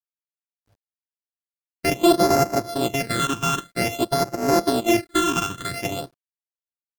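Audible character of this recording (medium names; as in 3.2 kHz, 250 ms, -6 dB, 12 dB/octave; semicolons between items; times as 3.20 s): a buzz of ramps at a fixed pitch in blocks of 64 samples; phasing stages 8, 0.51 Hz, lowest notch 590–3300 Hz; a quantiser's noise floor 12-bit, dither none; AAC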